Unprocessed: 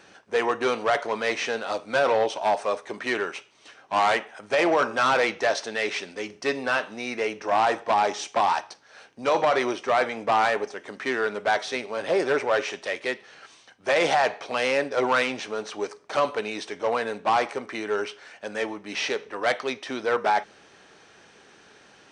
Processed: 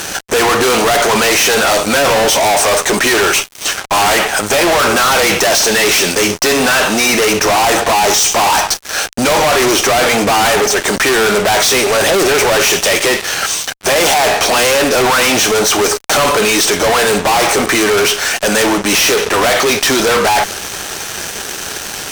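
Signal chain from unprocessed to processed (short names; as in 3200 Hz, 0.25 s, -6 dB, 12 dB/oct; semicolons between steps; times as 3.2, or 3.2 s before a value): ten-band EQ 125 Hz -8 dB, 250 Hz -11 dB, 500 Hz -8 dB, 1000 Hz -7 dB, 2000 Hz -8 dB, 4000 Hz -6 dB, 8000 Hz +5 dB; fuzz box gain 56 dB, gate -60 dBFS; gain +3 dB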